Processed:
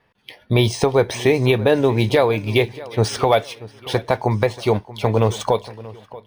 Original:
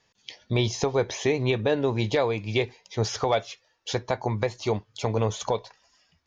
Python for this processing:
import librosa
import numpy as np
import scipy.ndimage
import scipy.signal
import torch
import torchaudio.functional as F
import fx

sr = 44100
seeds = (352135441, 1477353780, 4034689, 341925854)

y = fx.echo_feedback(x, sr, ms=633, feedback_pct=39, wet_db=-18.5)
y = fx.env_lowpass(y, sr, base_hz=2300.0, full_db=-21.0)
y = np.interp(np.arange(len(y)), np.arange(len(y))[::3], y[::3])
y = F.gain(torch.from_numpy(y), 8.0).numpy()